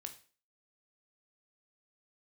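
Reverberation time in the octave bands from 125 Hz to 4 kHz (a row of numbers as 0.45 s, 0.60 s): 0.35 s, 0.40 s, 0.40 s, 0.40 s, 0.40 s, 0.40 s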